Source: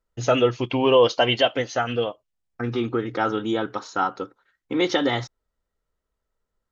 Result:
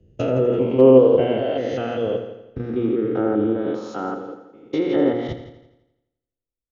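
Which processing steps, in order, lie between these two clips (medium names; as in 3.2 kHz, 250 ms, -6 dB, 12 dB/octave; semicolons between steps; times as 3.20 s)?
spectrogram pixelated in time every 200 ms; hum notches 60/120/180/240/300/360/420/480/540 Hz; low-pass that closes with the level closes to 1.7 kHz, closed at -22 dBFS; resonant low shelf 680 Hz +8 dB, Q 1.5; in parallel at +1.5 dB: compression 20:1, threshold -22 dBFS, peak gain reduction 15.5 dB; on the sum: hard clipper -1 dBFS, distortion -47 dB; on a send: multi-head delay 84 ms, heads first and second, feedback 57%, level -13 dB; on the sum: three bands expanded up and down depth 70%; trim -5.5 dB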